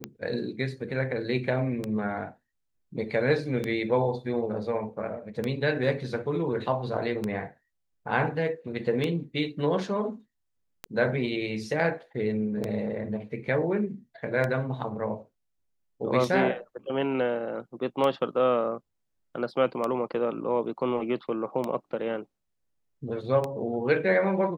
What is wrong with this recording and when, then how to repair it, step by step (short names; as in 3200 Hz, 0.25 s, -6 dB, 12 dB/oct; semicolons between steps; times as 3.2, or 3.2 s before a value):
tick 33 1/3 rpm -16 dBFS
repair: de-click